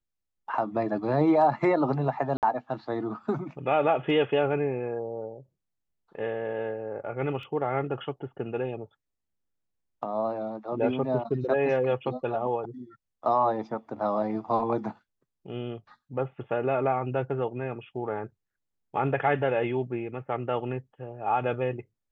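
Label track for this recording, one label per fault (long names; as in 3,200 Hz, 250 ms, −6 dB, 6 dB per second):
2.370000	2.430000	drop-out 58 ms
7.430000	7.430000	drop-out 2.2 ms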